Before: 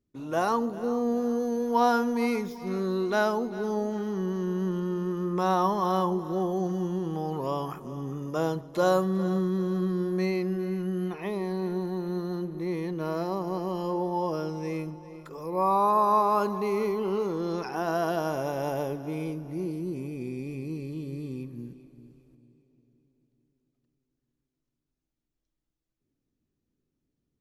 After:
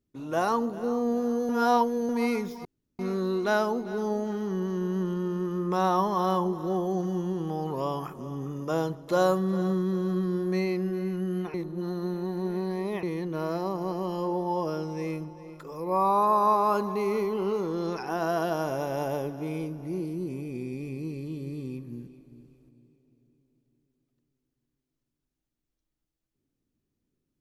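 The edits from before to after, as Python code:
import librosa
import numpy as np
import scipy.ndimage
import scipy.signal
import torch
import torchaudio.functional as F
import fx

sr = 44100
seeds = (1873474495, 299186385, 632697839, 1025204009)

y = fx.edit(x, sr, fx.reverse_span(start_s=1.49, length_s=0.6),
    fx.insert_room_tone(at_s=2.65, length_s=0.34),
    fx.reverse_span(start_s=11.2, length_s=1.49), tone=tone)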